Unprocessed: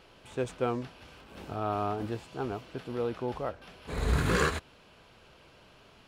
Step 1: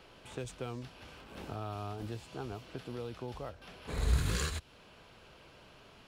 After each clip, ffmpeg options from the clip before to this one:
ffmpeg -i in.wav -filter_complex "[0:a]acrossover=split=120|3000[link_01][link_02][link_03];[link_02]acompressor=threshold=-40dB:ratio=5[link_04];[link_01][link_04][link_03]amix=inputs=3:normalize=0" out.wav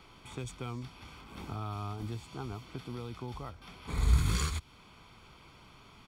ffmpeg -i in.wav -af "aecho=1:1:0.9:0.59" out.wav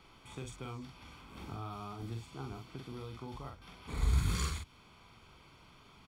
ffmpeg -i in.wav -filter_complex "[0:a]asplit=2[link_01][link_02];[link_02]adelay=44,volume=-4.5dB[link_03];[link_01][link_03]amix=inputs=2:normalize=0,volume=-4.5dB" out.wav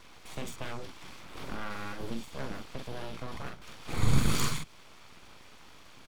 ffmpeg -i in.wav -af "aeval=exprs='abs(val(0))':channel_layout=same,volume=8dB" out.wav

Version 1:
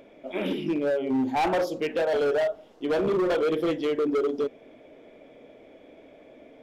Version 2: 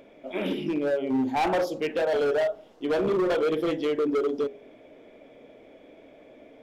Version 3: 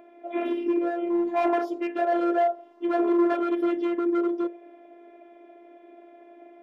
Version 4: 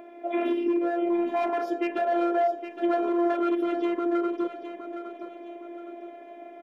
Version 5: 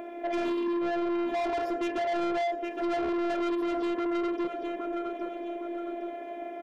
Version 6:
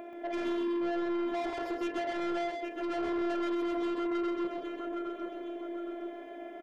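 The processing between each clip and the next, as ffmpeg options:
ffmpeg -i in.wav -af "bandreject=frequency=82.51:width_type=h:width=4,bandreject=frequency=165.02:width_type=h:width=4,bandreject=frequency=247.53:width_type=h:width=4,bandreject=frequency=330.04:width_type=h:width=4,bandreject=frequency=412.55:width_type=h:width=4,bandreject=frequency=495.06:width_type=h:width=4,bandreject=frequency=577.57:width_type=h:width=4,bandreject=frequency=660.08:width_type=h:width=4,bandreject=frequency=742.59:width_type=h:width=4,bandreject=frequency=825.1:width_type=h:width=4" out.wav
ffmpeg -i in.wav -filter_complex "[0:a]afftfilt=real='hypot(re,im)*cos(PI*b)':imag='0':win_size=512:overlap=0.75,acrossover=split=200 2100:gain=0.0794 1 0.178[link_01][link_02][link_03];[link_01][link_02][link_03]amix=inputs=3:normalize=0,volume=5.5dB" out.wav
ffmpeg -i in.wav -af "alimiter=limit=-24dB:level=0:latency=1:release=245,aecho=1:1:814|1628|2442|3256:0.335|0.127|0.0484|0.0184,volume=5.5dB" out.wav
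ffmpeg -i in.wav -filter_complex "[0:a]asplit=2[link_01][link_02];[link_02]acompressor=threshold=-33dB:ratio=6,volume=0dB[link_03];[link_01][link_03]amix=inputs=2:normalize=0,asoftclip=type=tanh:threshold=-26.5dB" out.wav
ffmpeg -i in.wav -af "aecho=1:1:130:0.596,volume=-4.5dB" out.wav

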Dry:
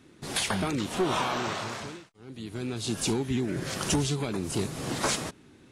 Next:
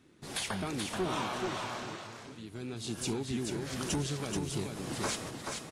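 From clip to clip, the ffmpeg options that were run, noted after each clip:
ffmpeg -i in.wav -af "aecho=1:1:431:0.596,volume=-7dB" out.wav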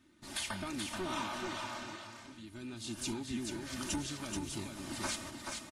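ffmpeg -i in.wav -af "equalizer=frequency=460:width=1.8:gain=-9,aecho=1:1:3.3:0.61,volume=-3.5dB" out.wav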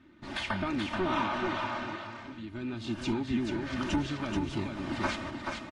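ffmpeg -i in.wav -af "lowpass=2600,volume=8.5dB" out.wav

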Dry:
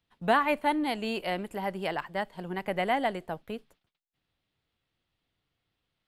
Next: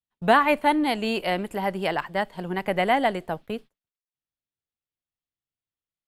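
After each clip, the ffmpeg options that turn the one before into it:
ffmpeg -i in.wav -af "agate=range=-25dB:threshold=-47dB:ratio=16:detection=peak,volume=6dB" out.wav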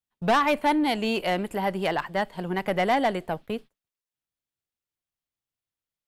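ffmpeg -i in.wav -af "asoftclip=type=tanh:threshold=-16.5dB,volume=1dB" out.wav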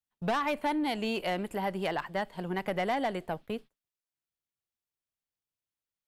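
ffmpeg -i in.wav -af "acompressor=threshold=-22dB:ratio=6,volume=-4.5dB" out.wav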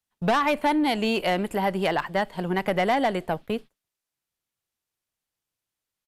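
ffmpeg -i in.wav -af "aresample=32000,aresample=44100,volume=7.5dB" out.wav

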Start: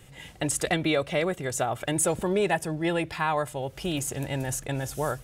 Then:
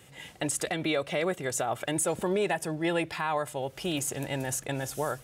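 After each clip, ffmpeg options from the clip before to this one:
ffmpeg -i in.wav -af "highpass=frequency=190:poles=1,alimiter=limit=-18.5dB:level=0:latency=1:release=88" out.wav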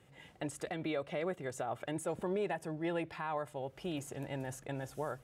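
ffmpeg -i in.wav -af "highshelf=frequency=2900:gain=-12,volume=-7dB" out.wav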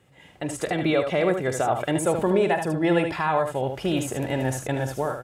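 ffmpeg -i in.wav -af "dynaudnorm=framelen=200:gausssize=5:maxgain=11dB,aecho=1:1:46|76:0.188|0.447,volume=3dB" out.wav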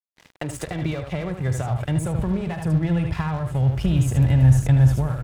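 ffmpeg -i in.wav -filter_complex "[0:a]acrossover=split=150[link_01][link_02];[link_02]acompressor=threshold=-35dB:ratio=10[link_03];[link_01][link_03]amix=inputs=2:normalize=0,asubboost=boost=9:cutoff=130,aeval=exprs='sgn(val(0))*max(abs(val(0))-0.00473,0)':channel_layout=same,volume=8.5dB" out.wav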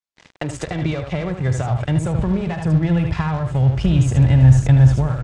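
ffmpeg -i in.wav -af "lowpass=frequency=7800:width=0.5412,lowpass=frequency=7800:width=1.3066,volume=4dB" out.wav

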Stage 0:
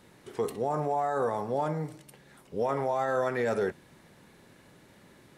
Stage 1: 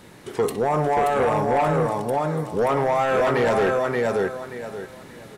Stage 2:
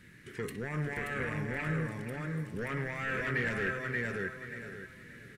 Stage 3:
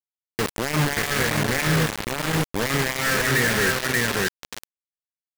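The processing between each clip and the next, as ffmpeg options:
ffmpeg -i in.wav -filter_complex "[0:a]aecho=1:1:579|1158|1737|2316:0.668|0.167|0.0418|0.0104,asplit=2[link_01][link_02];[link_02]aeval=exprs='0.2*sin(PI/2*3.16*val(0)/0.2)':channel_layout=same,volume=-6.5dB[link_03];[link_01][link_03]amix=inputs=2:normalize=0" out.wav
ffmpeg -i in.wav -af "firequalizer=gain_entry='entry(130,0);entry(770,-23);entry(1700,5);entry(3500,-7)':delay=0.05:min_phase=1,aecho=1:1:475:0.251,volume=-6.5dB" out.wav
ffmpeg -i in.wav -filter_complex "[0:a]asplit=2[link_01][link_02];[link_02]asoftclip=type=tanh:threshold=-32dB,volume=-4dB[link_03];[link_01][link_03]amix=inputs=2:normalize=0,acrusher=bits=4:mix=0:aa=0.000001,volume=7.5dB" out.wav

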